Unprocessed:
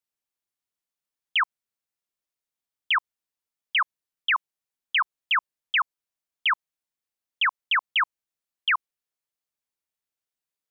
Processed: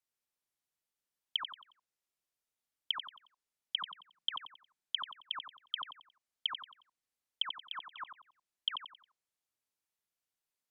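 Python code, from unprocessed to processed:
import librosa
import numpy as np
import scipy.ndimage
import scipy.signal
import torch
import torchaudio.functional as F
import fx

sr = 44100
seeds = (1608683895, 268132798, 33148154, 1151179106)

y = fx.env_lowpass_down(x, sr, base_hz=440.0, full_db=-24.5)
y = fx.peak_eq(y, sr, hz=180.0, db=10.0, octaves=0.74, at=(3.78, 4.32))
y = fx.echo_feedback(y, sr, ms=90, feedback_pct=35, wet_db=-8.5)
y = y * librosa.db_to_amplitude(-1.5)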